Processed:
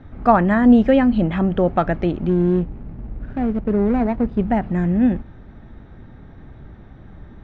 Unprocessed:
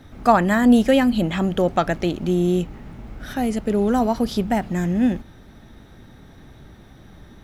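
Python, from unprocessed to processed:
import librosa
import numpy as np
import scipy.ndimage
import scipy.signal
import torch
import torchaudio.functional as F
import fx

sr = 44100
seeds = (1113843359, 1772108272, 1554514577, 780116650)

y = fx.median_filter(x, sr, points=41, at=(2.29, 4.39))
y = scipy.signal.sosfilt(scipy.signal.butter(2, 2000.0, 'lowpass', fs=sr, output='sos'), y)
y = fx.low_shelf(y, sr, hz=130.0, db=6.0)
y = F.gain(torch.from_numpy(y), 1.0).numpy()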